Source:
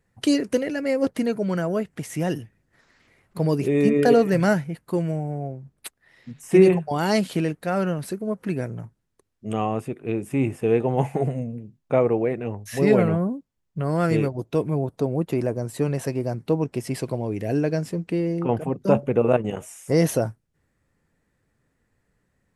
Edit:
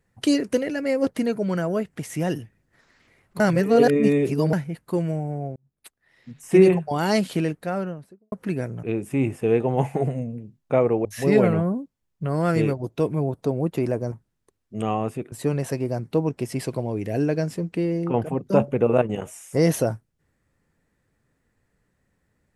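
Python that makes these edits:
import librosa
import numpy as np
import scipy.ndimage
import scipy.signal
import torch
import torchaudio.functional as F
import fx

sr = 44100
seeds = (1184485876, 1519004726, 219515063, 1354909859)

y = fx.studio_fade_out(x, sr, start_s=7.45, length_s=0.87)
y = fx.edit(y, sr, fx.reverse_span(start_s=3.4, length_s=1.13),
    fx.fade_in_span(start_s=5.56, length_s=0.98),
    fx.move(start_s=8.83, length_s=1.2, to_s=15.67),
    fx.cut(start_s=12.25, length_s=0.35), tone=tone)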